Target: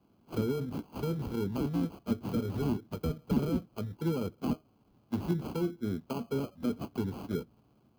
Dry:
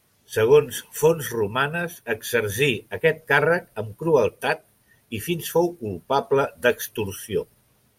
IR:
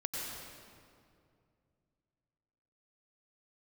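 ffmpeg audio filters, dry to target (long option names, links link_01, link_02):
-filter_complex "[0:a]acrusher=samples=24:mix=1:aa=0.000001,alimiter=limit=-14dB:level=0:latency=1:release=19,equalizer=frequency=250:width_type=o:width=1:gain=8,equalizer=frequency=500:width_type=o:width=1:gain=-5,equalizer=frequency=2000:width_type=o:width=1:gain=-8,equalizer=frequency=8000:width_type=o:width=1:gain=-11,acrossover=split=330[link_01][link_02];[link_02]acompressor=threshold=-35dB:ratio=4[link_03];[link_01][link_03]amix=inputs=2:normalize=0,highpass=48,volume=-5dB"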